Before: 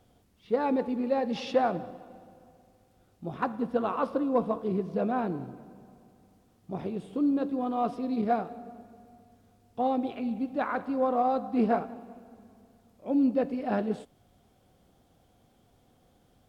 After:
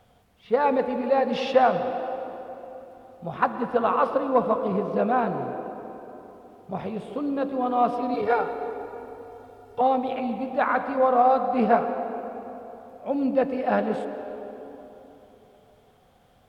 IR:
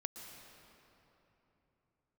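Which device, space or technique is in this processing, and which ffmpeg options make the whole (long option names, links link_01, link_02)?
filtered reverb send: -filter_complex "[0:a]asettb=1/sr,asplit=3[link_01][link_02][link_03];[link_01]atrim=end=8.144[link_04];[link_02]atrim=start=8.14:end=9.81,asetpts=PTS-STARTPTS,afade=type=in:duration=0.004:curve=qsin,afade=type=out:start_time=1.666:duration=0.004:curve=qsin,aecho=1:1:2.2:0.97,atrim=end_sample=73647[link_05];[link_03]atrim=start=9.806[link_06];[link_04][link_05]acrossfade=duration=0.004:curve1=hsin:curve2=qsin[link_07];[link_07][link_06]acrossfade=duration=0.004:curve1=qsin:curve2=hsin,asplit=2[link_08][link_09];[link_09]highpass=frequency=320:width=0.5412,highpass=frequency=320:width=1.3066,lowpass=3600[link_10];[1:a]atrim=start_sample=2205[link_11];[link_10][link_11]afir=irnorm=-1:irlink=0,volume=3.5dB[link_12];[link_08][link_12]amix=inputs=2:normalize=0,volume=2.5dB"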